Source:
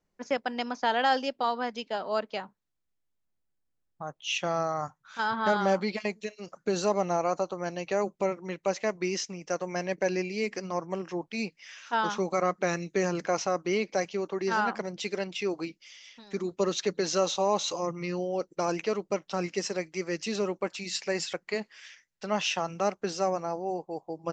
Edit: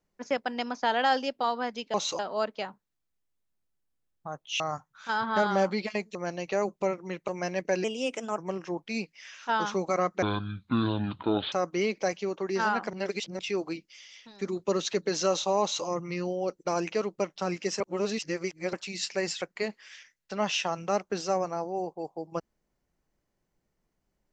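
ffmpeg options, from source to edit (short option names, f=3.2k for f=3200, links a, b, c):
-filter_complex "[0:a]asplit=14[a][b][c][d][e][f][g][h][i][j][k][l][m][n];[a]atrim=end=1.942[o];[b]atrim=start=17.528:end=17.782[p];[c]atrim=start=1.938:end=4.352[q];[d]atrim=start=4.698:end=6.252[r];[e]atrim=start=7.538:end=8.672[s];[f]atrim=start=9.608:end=10.174[t];[g]atrim=start=10.17:end=10.82,asetpts=PTS-STARTPTS,asetrate=52920,aresample=44100[u];[h]atrim=start=10.816:end=12.664[v];[i]atrim=start=12.66:end=13.44,asetpts=PTS-STARTPTS,asetrate=26460,aresample=44100[w];[j]atrim=start=13.436:end=14.852[x];[k]atrim=start=14.848:end=15.312,asetpts=PTS-STARTPTS,areverse[y];[l]atrim=start=15.308:end=19.722[z];[m]atrim=start=19.718:end=20.652,asetpts=PTS-STARTPTS,areverse[aa];[n]atrim=start=20.648[ab];[o][p]acrossfade=d=0.004:c1=hsin:c2=hsin[ac];[ac][q]acrossfade=d=0.004:c1=hsin:c2=hsin[ad];[ad][r]acrossfade=d=0.004:c1=hsin:c2=hsin[ae];[ae][s]acrossfade=d=0.004:c1=hsin:c2=hsin[af];[af][t]acrossfade=d=0.004:c1=hsin:c2=hsin[ag];[ag][u]acrossfade=d=0.004:c1=hsin:c2=hsin[ah];[ah][v]acrossfade=d=0.004:c1=hsin:c2=hsin[ai];[ai][w]acrossfade=d=0.004:c1=hsin:c2=hsin[aj];[aj][x]acrossfade=d=0.004:c1=hsin:c2=hsin[ak];[ak][y]acrossfade=d=0.004:c1=hsin:c2=hsin[al];[al][z]acrossfade=d=0.004:c1=hsin:c2=hsin[am];[am][aa]acrossfade=d=0.004:c1=hsin:c2=hsin[an];[an][ab]acrossfade=d=0.004:c1=hsin:c2=hsin"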